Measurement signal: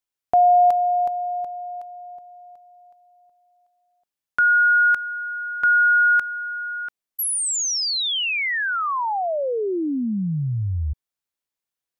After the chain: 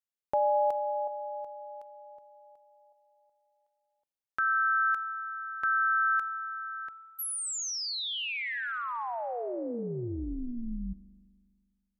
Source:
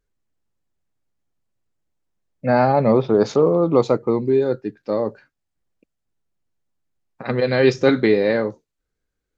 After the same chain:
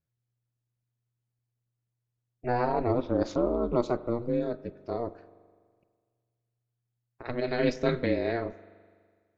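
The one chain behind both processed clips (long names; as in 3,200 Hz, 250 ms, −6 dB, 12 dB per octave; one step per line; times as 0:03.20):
ring modulation 120 Hz
spring reverb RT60 1.8 s, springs 41 ms, chirp 35 ms, DRR 16.5 dB
level −8 dB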